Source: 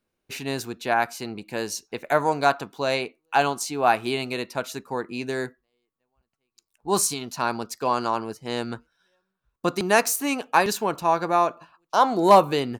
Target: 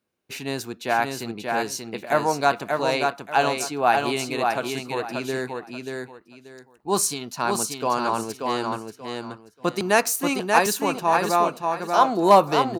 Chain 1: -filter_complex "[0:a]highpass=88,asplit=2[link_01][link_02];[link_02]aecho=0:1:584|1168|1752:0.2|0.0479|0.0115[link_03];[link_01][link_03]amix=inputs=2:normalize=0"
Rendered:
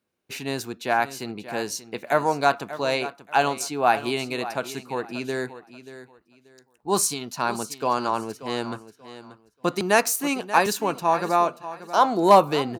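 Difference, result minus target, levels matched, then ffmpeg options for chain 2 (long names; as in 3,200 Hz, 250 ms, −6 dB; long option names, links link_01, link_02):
echo-to-direct −10 dB
-filter_complex "[0:a]highpass=88,asplit=2[link_01][link_02];[link_02]aecho=0:1:584|1168|1752:0.631|0.151|0.0363[link_03];[link_01][link_03]amix=inputs=2:normalize=0"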